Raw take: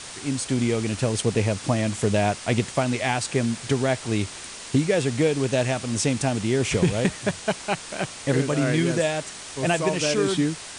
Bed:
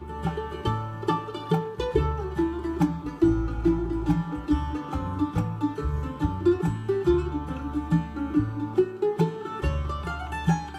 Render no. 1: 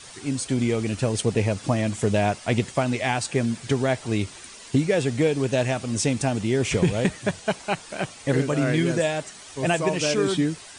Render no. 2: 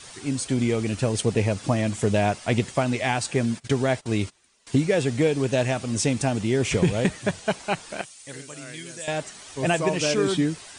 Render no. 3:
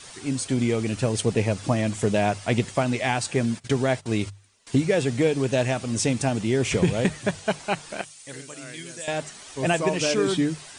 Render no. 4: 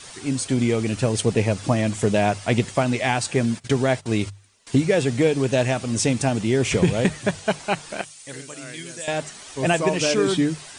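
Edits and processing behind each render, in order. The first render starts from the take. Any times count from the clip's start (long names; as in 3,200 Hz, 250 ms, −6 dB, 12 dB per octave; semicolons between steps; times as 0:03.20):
broadband denoise 9 dB, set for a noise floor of −39 dBFS
0:03.36–0:04.67: noise gate −38 dBFS, range −21 dB; 0:08.01–0:09.08: first-order pre-emphasis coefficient 0.9
mains-hum notches 50/100/150 Hz
level +2.5 dB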